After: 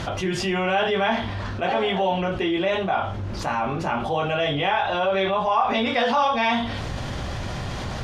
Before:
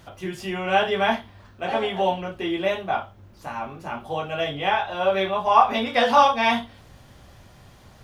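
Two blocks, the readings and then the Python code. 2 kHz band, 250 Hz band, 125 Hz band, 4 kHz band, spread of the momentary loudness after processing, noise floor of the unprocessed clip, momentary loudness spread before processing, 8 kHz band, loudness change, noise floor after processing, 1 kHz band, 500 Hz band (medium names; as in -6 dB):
+1.0 dB, +3.5 dB, +8.5 dB, +1.5 dB, 10 LU, -50 dBFS, 15 LU, no reading, -1.0 dB, -30 dBFS, -1.5 dB, +0.5 dB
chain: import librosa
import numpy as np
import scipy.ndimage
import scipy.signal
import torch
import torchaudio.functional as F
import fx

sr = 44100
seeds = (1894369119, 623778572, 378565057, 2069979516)

y = scipy.signal.sosfilt(scipy.signal.butter(2, 6400.0, 'lowpass', fs=sr, output='sos'), x)
y = fx.env_flatten(y, sr, amount_pct=70)
y = y * librosa.db_to_amplitude(-7.0)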